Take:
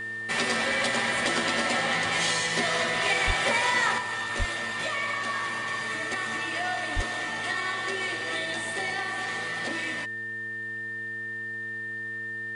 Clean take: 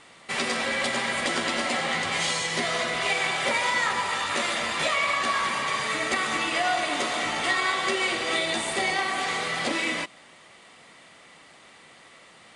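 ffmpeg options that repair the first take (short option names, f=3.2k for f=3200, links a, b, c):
-filter_complex "[0:a]bandreject=f=112.6:t=h:w=4,bandreject=f=225.2:t=h:w=4,bandreject=f=337.8:t=h:w=4,bandreject=f=450.4:t=h:w=4,bandreject=f=1.8k:w=30,asplit=3[a][b][c];[a]afade=t=out:st=3.26:d=0.02[d];[b]highpass=f=140:w=0.5412,highpass=f=140:w=1.3066,afade=t=in:st=3.26:d=0.02,afade=t=out:st=3.38:d=0.02[e];[c]afade=t=in:st=3.38:d=0.02[f];[d][e][f]amix=inputs=3:normalize=0,asplit=3[g][h][i];[g]afade=t=out:st=4.38:d=0.02[j];[h]highpass=f=140:w=0.5412,highpass=f=140:w=1.3066,afade=t=in:st=4.38:d=0.02,afade=t=out:st=4.5:d=0.02[k];[i]afade=t=in:st=4.5:d=0.02[l];[j][k][l]amix=inputs=3:normalize=0,asplit=3[m][n][o];[m]afade=t=out:st=6.95:d=0.02[p];[n]highpass=f=140:w=0.5412,highpass=f=140:w=1.3066,afade=t=in:st=6.95:d=0.02,afade=t=out:st=7.07:d=0.02[q];[o]afade=t=in:st=7.07:d=0.02[r];[p][q][r]amix=inputs=3:normalize=0,asetnsamples=n=441:p=0,asendcmd='3.98 volume volume 6.5dB',volume=0dB"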